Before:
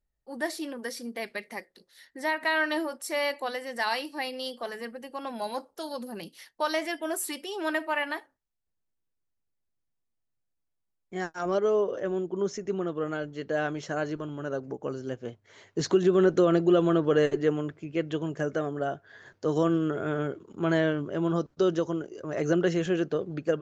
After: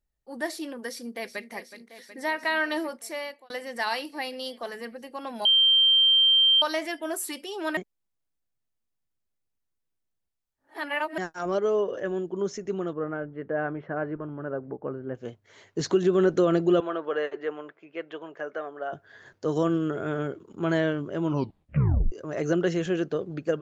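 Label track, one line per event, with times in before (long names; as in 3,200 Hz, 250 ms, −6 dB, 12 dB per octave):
0.870000	1.510000	delay throw 370 ms, feedback 80%, level −12 dB
2.910000	3.500000	fade out
5.450000	6.620000	beep over 3,150 Hz −16 dBFS
7.770000	11.180000	reverse
11.780000	12.330000	hollow resonant body resonances 1,700/2,900 Hz, height 9 dB
12.930000	15.150000	low-pass filter 1,900 Hz 24 dB per octave
16.800000	18.930000	band-pass filter 590–2,500 Hz
21.230000	21.230000	tape stop 0.89 s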